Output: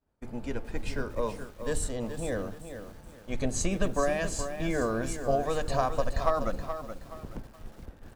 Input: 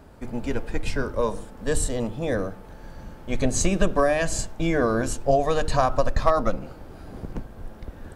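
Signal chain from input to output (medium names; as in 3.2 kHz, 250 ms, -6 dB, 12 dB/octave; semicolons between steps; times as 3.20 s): expander -34 dBFS; bit-crushed delay 424 ms, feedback 35%, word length 7-bit, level -9 dB; trim -7 dB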